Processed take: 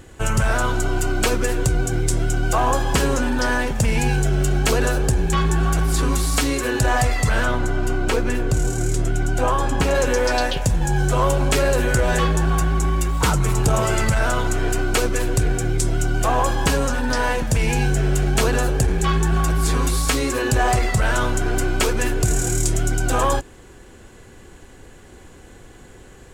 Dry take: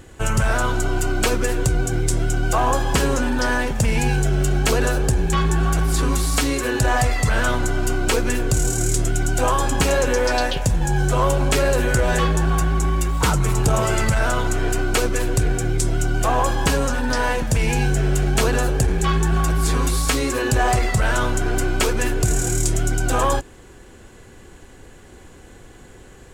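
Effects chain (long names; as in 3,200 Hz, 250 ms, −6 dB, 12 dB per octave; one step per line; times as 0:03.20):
0:07.44–0:09.95: high-shelf EQ 3,800 Hz −9 dB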